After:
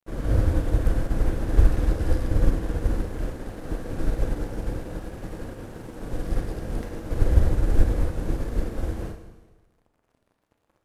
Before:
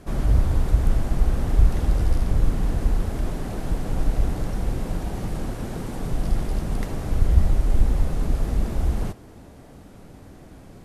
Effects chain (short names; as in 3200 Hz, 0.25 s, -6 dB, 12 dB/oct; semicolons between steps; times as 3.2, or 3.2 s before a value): thirty-one-band EQ 100 Hz +5 dB, 315 Hz +9 dB, 500 Hz +10 dB, 1600 Hz +7 dB; crossover distortion -35 dBFS; Schroeder reverb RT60 1.3 s, combs from 27 ms, DRR 3 dB; upward expander 1.5:1, over -30 dBFS